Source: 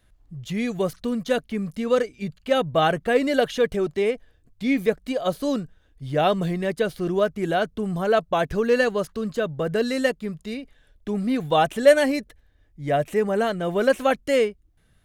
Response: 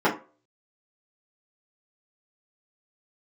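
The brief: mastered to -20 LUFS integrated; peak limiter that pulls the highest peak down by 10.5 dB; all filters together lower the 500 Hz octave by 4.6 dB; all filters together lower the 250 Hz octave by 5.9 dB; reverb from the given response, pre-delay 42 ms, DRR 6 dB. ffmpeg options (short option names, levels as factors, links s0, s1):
-filter_complex "[0:a]equalizer=f=250:t=o:g=-6.5,equalizer=f=500:t=o:g=-4,alimiter=limit=0.126:level=0:latency=1,asplit=2[s0][s1];[1:a]atrim=start_sample=2205,adelay=42[s2];[s1][s2]afir=irnorm=-1:irlink=0,volume=0.0631[s3];[s0][s3]amix=inputs=2:normalize=0,volume=2.66"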